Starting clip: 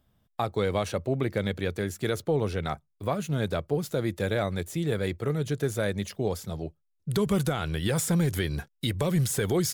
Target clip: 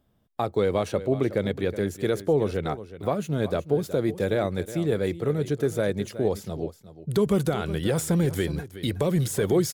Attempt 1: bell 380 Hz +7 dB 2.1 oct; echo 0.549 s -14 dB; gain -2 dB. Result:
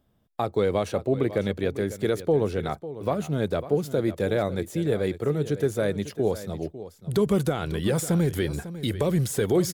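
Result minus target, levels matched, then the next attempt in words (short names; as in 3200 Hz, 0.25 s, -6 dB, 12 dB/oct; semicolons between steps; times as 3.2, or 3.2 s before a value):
echo 0.18 s late
bell 380 Hz +7 dB 2.1 oct; echo 0.369 s -14 dB; gain -2 dB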